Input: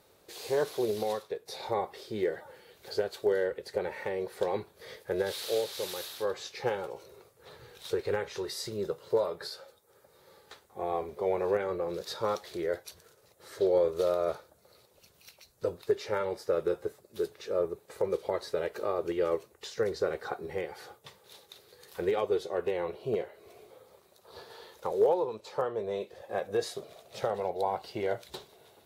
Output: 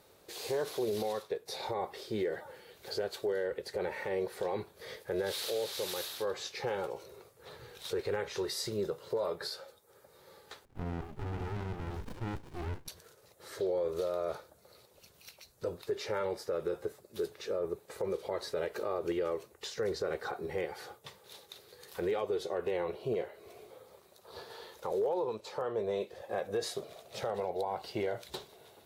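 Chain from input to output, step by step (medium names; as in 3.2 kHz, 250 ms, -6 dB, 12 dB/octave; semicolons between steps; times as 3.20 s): peak limiter -26 dBFS, peak gain reduction 11 dB; 10.65–12.88 s: sliding maximum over 65 samples; trim +1 dB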